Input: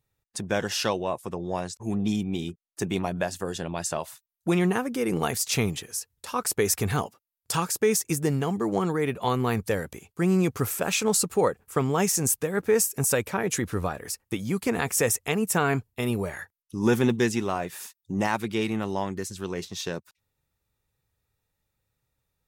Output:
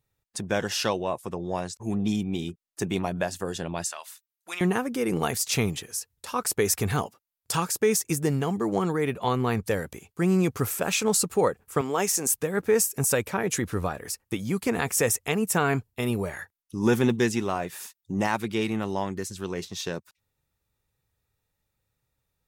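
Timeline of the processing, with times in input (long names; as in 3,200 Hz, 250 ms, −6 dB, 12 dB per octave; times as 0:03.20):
0:03.84–0:04.61: high-pass filter 1,400 Hz
0:09.19–0:09.66: high-shelf EQ 9,300 Hz −8.5 dB
0:11.81–0:12.34: high-pass filter 300 Hz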